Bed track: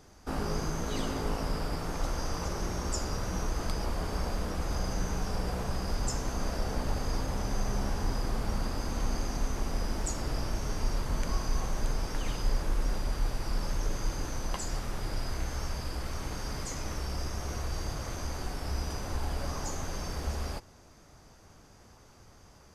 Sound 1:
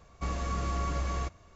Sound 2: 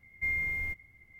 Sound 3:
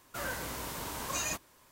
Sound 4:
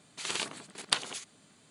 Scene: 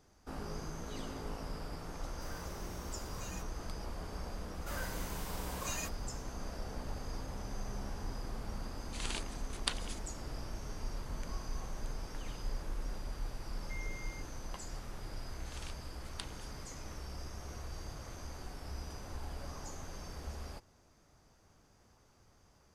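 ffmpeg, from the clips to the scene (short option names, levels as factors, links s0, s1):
-filter_complex "[3:a]asplit=2[s0][s1];[4:a]asplit=2[s2][s3];[0:a]volume=0.316[s4];[s0]atrim=end=1.71,asetpts=PTS-STARTPTS,volume=0.168,afade=t=in:d=0.004:c=hsin,afade=t=out:st=1.706:d=0.004:c=hsin,adelay=2060[s5];[s1]atrim=end=1.71,asetpts=PTS-STARTPTS,volume=0.501,afade=t=in:d=0.004:c=hsin,afade=t=out:st=1.706:d=0.004:c=hsin,adelay=4520[s6];[s2]atrim=end=1.7,asetpts=PTS-STARTPTS,volume=0.422,afade=t=in:d=0.004:c=hsin,afade=t=out:st=1.696:d=0.004:c=hsin,adelay=8750[s7];[2:a]atrim=end=1.19,asetpts=PTS-STARTPTS,volume=0.126,afade=t=in:d=0.004:c=hsin,afade=t=out:st=1.186:d=0.004:c=hsin,adelay=594468S[s8];[s3]atrim=end=1.7,asetpts=PTS-STARTPTS,volume=0.133,afade=t=in:d=0.004:c=hsin,afade=t=out:st=1.696:d=0.004:c=hsin,adelay=15270[s9];[s4][s5][s6][s7][s8][s9]amix=inputs=6:normalize=0"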